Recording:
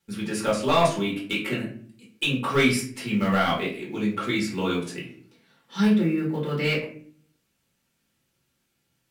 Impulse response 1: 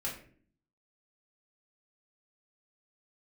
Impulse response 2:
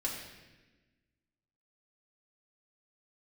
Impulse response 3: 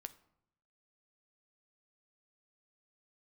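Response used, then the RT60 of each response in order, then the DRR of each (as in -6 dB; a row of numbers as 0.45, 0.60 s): 1; 0.50, 1.2, 0.75 s; -5.0, -4.5, 10.0 dB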